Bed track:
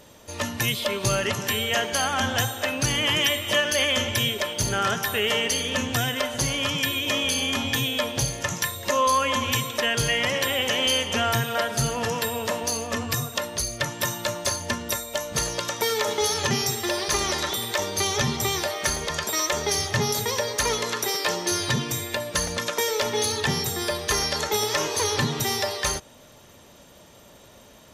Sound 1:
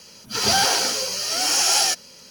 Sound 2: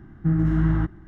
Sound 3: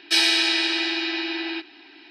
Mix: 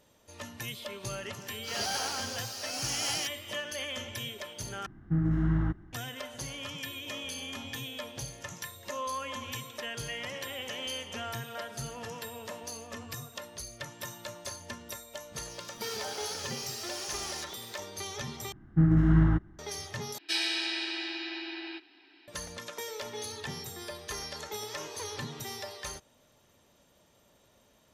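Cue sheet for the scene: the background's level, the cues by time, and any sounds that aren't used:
bed track -14.5 dB
1.33 add 1 -15 dB
4.86 replace with 2 -6.5 dB
15.5 add 1 -6.5 dB + compressor 5:1, threshold -32 dBFS
18.52 replace with 2 -0.5 dB + upward expander, over -32 dBFS
20.18 replace with 3 -11.5 dB

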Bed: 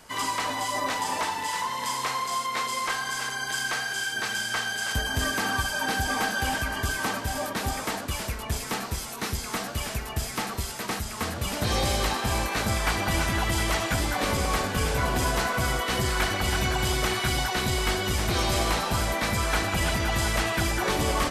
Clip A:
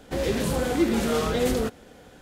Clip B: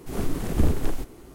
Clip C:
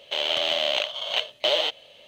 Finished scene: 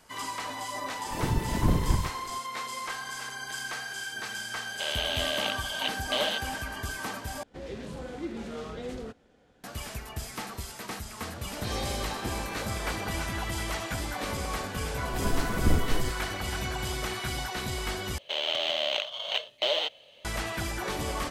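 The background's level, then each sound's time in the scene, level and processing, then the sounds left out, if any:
bed -7 dB
1.05 add B -3 dB + whisperiser
4.68 add C -6.5 dB
7.43 replace with A -13.5 dB + air absorption 63 m
11.45 add A -18 dB + whisperiser
15.07 add B -3 dB
18.18 replace with C -4.5 dB

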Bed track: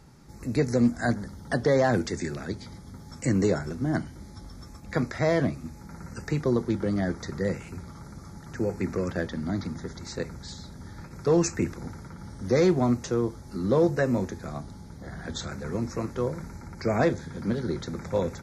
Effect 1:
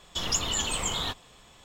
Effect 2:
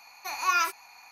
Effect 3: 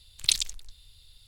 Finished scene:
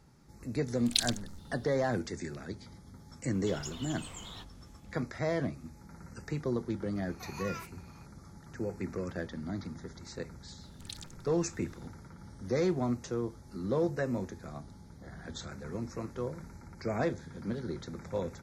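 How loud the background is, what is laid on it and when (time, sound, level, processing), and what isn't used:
bed track -8 dB
0.67 add 3 -5.5 dB + stuck buffer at 0.61
3.31 add 1 -16.5 dB
6.95 add 2 -12.5 dB + compressor, threshold -26 dBFS
10.61 add 3 -9.5 dB + compressor 1.5:1, threshold -50 dBFS

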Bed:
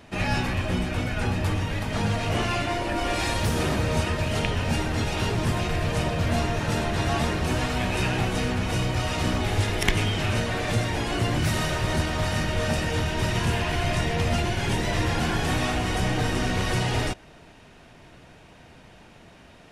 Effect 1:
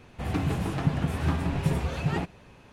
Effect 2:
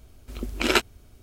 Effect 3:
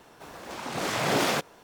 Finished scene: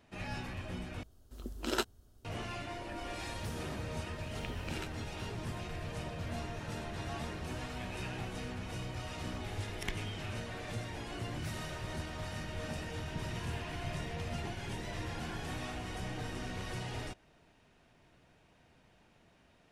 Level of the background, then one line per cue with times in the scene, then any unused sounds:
bed -15.5 dB
1.03 replace with 2 -10.5 dB + bell 2300 Hz -13 dB 0.41 oct
4.07 add 2 -12.5 dB + compressor 10:1, threshold -26 dBFS
12.29 add 1 -15.5 dB + noise-modulated level
not used: 3

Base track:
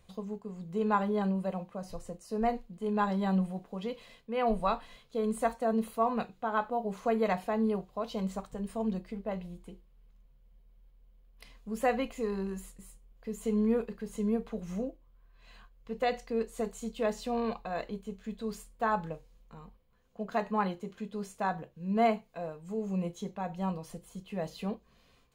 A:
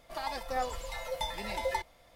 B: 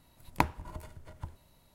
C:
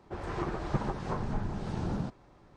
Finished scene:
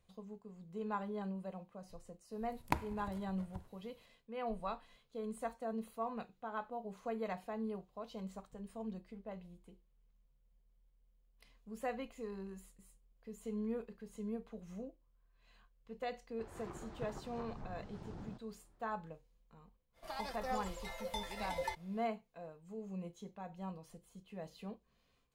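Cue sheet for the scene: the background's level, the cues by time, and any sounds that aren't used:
base track -11.5 dB
2.32 add B -7.5 dB + Schroeder reverb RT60 0.76 s, combs from 32 ms, DRR 16.5 dB
16.28 add C -15.5 dB + Doppler distortion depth 0.54 ms
19.93 add A -7 dB, fades 0.05 s

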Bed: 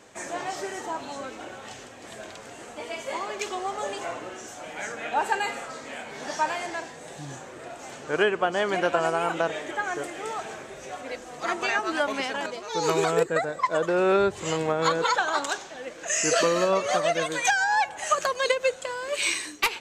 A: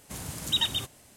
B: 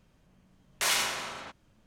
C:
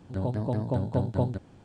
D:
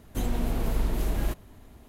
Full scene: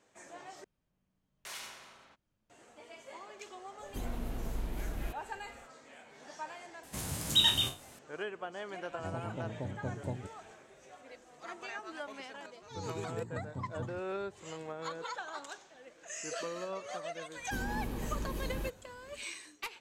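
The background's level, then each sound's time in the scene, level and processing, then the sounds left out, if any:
bed -17 dB
0.64 replace with B -17.5 dB
3.79 add D -10.5 dB
6.83 add A -1.5 dB + spectral trails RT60 0.31 s
8.89 add C -12 dB
12.61 add C -17.5 dB + comb 0.9 ms, depth 58%
17.36 add D -6.5 dB + notch comb 700 Hz

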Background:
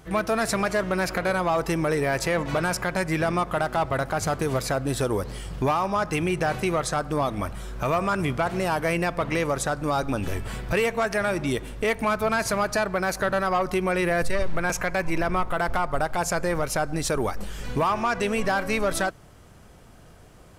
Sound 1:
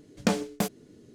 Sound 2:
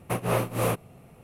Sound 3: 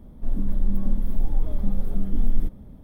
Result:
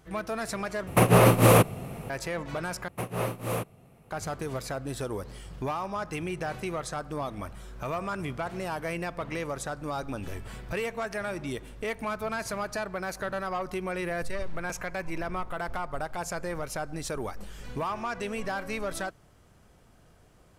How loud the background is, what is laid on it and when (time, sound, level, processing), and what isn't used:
background -8.5 dB
0.87 replace with 2 -6.5 dB + maximiser +19.5 dB
2.88 replace with 2 -5 dB
not used: 1, 3

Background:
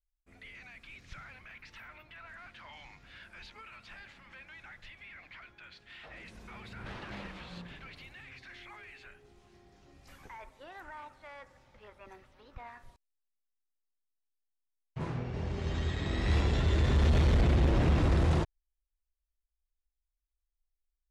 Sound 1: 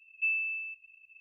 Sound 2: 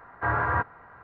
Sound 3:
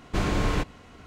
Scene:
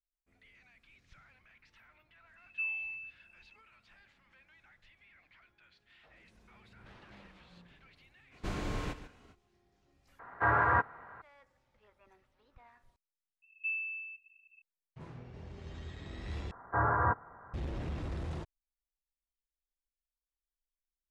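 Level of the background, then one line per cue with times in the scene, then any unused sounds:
background -12.5 dB
2.36 add 1 -6 dB
8.3 add 3 -11.5 dB, fades 0.05 s + echo 0.141 s -13 dB
10.19 replace with 2 -1 dB + low shelf 190 Hz -5 dB
13.42 add 1 -6 dB + HPF 77 Hz
16.51 replace with 2 -2.5 dB + LPF 1500 Hz 24 dB/oct

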